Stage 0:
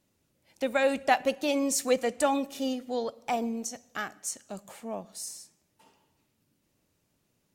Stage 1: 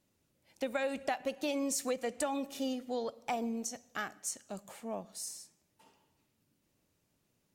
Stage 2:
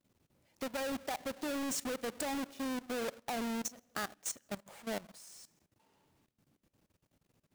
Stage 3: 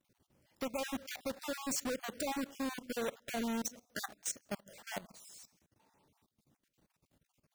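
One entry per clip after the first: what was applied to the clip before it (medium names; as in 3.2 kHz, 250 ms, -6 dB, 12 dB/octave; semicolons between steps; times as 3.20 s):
compression 10:1, threshold -27 dBFS, peak gain reduction 10.5 dB; trim -3 dB
square wave that keeps the level; level held to a coarse grid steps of 18 dB
random holes in the spectrogram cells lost 29%; trim +1 dB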